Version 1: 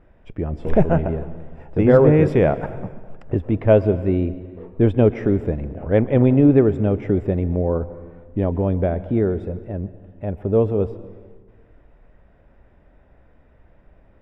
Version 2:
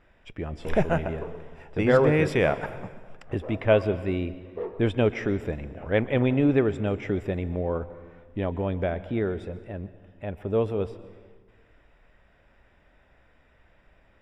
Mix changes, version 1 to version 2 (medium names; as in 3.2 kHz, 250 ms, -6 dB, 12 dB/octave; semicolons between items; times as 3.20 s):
speech: add tilt shelf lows -9 dB, about 1.3 kHz; background +8.5 dB